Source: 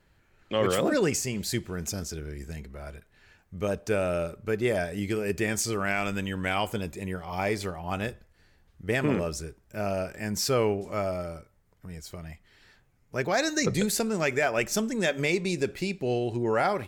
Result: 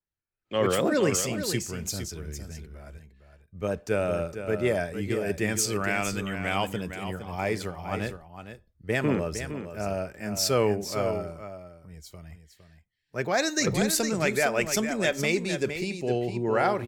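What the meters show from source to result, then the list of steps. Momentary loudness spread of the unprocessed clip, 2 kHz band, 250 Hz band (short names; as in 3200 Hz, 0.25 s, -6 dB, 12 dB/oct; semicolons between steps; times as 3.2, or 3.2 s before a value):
15 LU, +0.5 dB, +0.5 dB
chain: spectral noise reduction 15 dB; echo 0.46 s -7.5 dB; three-band expander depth 40%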